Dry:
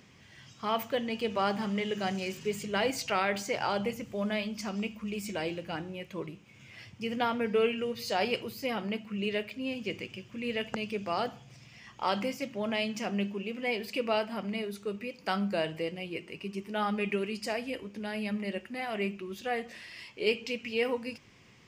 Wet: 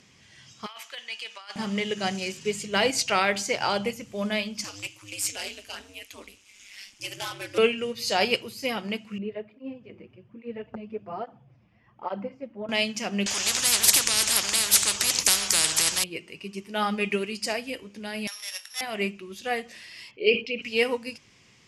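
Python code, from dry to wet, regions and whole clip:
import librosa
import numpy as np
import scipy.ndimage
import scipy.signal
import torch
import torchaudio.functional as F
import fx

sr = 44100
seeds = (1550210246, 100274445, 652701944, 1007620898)

y = fx.chain(x, sr, fx.highpass(hz=1500.0, slope=12),
    fx.high_shelf(hz=5200.0, db=-4.5),
    fx.over_compress(threshold_db=-40.0, ratio=-0.5), at=(0.66, 1.56))
y = fx.chain(y, sr, fx.tilt_eq(slope=4.0),
    fx.clip_hard(threshold_db=-30.5),
    fx.ring_mod(carrier_hz=100.0), at=(4.64, 7.58))
y = fx.chain(y, sr, fx.lowpass(hz=1000.0, slope=12),
    fx.flanger_cancel(hz=1.2, depth_ms=8.0), at=(9.18, 12.69))
y = fx.chain(y, sr, fx.peak_eq(hz=6700.0, db=11.5, octaves=1.6),
    fx.spectral_comp(ratio=10.0), at=(13.26, 16.04))
y = fx.chain(y, sr, fx.sample_sort(block=8),
    fx.highpass(hz=950.0, slope=24),
    fx.transient(attack_db=2, sustain_db=6), at=(18.27, 18.81))
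y = fx.chain(y, sr, fx.envelope_sharpen(power=1.5),
    fx.lowpass(hz=3700.0, slope=12),
    fx.sustainer(db_per_s=120.0), at=(20.11, 20.62))
y = scipy.signal.sosfilt(scipy.signal.ellip(4, 1.0, 40, 12000.0, 'lowpass', fs=sr, output='sos'), y)
y = fx.high_shelf(y, sr, hz=3200.0, db=9.0)
y = fx.upward_expand(y, sr, threshold_db=-40.0, expansion=1.5)
y = y * librosa.db_to_amplitude(8.0)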